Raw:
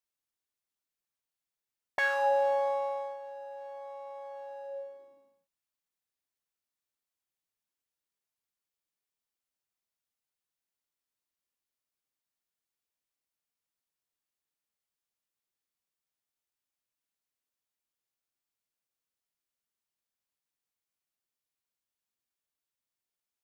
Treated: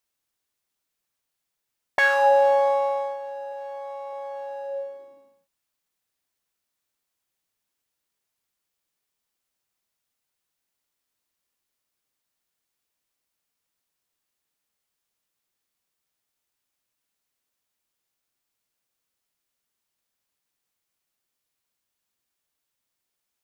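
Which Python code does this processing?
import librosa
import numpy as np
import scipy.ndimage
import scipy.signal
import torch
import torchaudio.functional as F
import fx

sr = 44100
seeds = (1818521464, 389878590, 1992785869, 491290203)

y = fx.highpass(x, sr, hz=270.0, slope=6, at=(3.52, 4.13))
y = y * librosa.db_to_amplitude(9.0)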